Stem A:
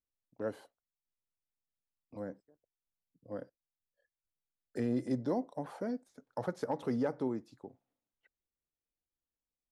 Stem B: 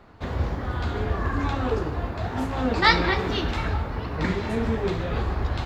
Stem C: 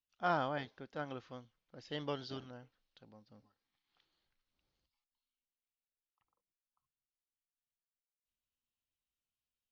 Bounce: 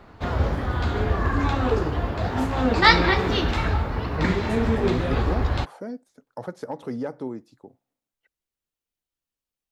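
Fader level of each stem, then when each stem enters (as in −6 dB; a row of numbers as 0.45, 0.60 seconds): +2.5, +3.0, −2.0 decibels; 0.00, 0.00, 0.00 seconds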